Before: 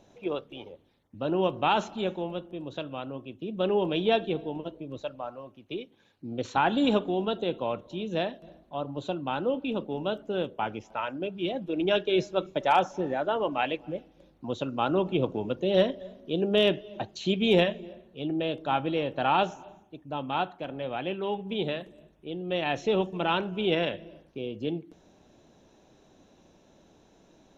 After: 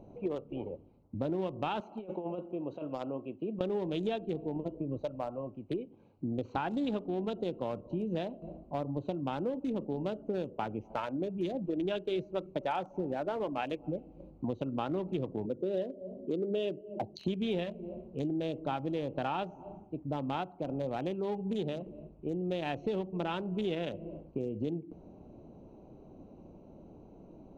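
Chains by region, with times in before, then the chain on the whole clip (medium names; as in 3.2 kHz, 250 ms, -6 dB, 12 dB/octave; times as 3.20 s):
1.80–3.61 s: high-pass 640 Hz 6 dB/octave + compressor with a negative ratio -39 dBFS, ratio -0.5
15.46–17.28 s: resonances exaggerated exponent 1.5 + high-pass 150 Hz 6 dB/octave
whole clip: local Wiener filter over 25 samples; bass shelf 480 Hz +5.5 dB; compression 6:1, threshold -35 dBFS; trim +3.5 dB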